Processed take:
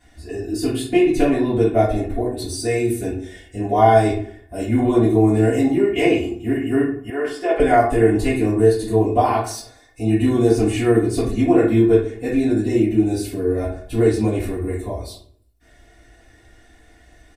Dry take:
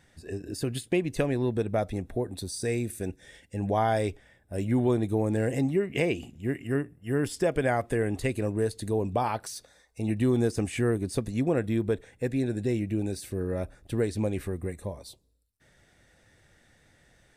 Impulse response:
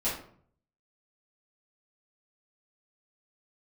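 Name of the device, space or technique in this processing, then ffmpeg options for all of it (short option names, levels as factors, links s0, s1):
microphone above a desk: -filter_complex "[0:a]aecho=1:1:2.8:0.76[s0];[1:a]atrim=start_sample=2205[s1];[s0][s1]afir=irnorm=-1:irlink=0,asettb=1/sr,asplit=3[s2][s3][s4];[s2]atrim=end=7.104[s5];[s3]atrim=start=7.1:end=7.6,asetpts=PTS-STARTPTS,afade=t=in:d=0.004:c=qsin,afade=t=out:st=0.496:d=0.004:c=qsin,acrossover=split=390 4200:gain=0.0794 1 0.224[s6][s7][s8];[s6][s7][s8]amix=inputs=3:normalize=0[s9];[s4]atrim=start=7.596[s10];[s5][s9]acrossfade=d=0.004:c1=hsin:c2=qsin[s11];[s11][s10]acrossfade=d=0.004:c1=qsin:c2=hsin"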